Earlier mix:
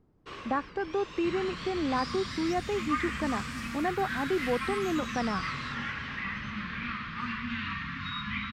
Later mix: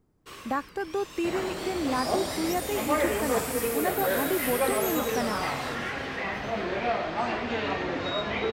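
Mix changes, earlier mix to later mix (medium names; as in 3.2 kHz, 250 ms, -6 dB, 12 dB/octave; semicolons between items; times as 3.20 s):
first sound -3.0 dB; second sound: remove Chebyshev band-stop 240–1100 Hz, order 4; master: remove distance through air 160 m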